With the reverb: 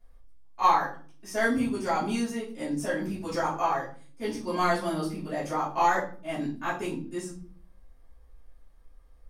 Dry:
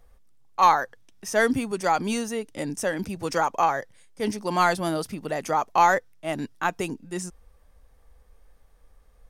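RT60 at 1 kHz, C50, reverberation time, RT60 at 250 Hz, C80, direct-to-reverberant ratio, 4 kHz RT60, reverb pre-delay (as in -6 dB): 0.40 s, 7.0 dB, 0.45 s, 0.80 s, 13.0 dB, -11.5 dB, 0.35 s, 3 ms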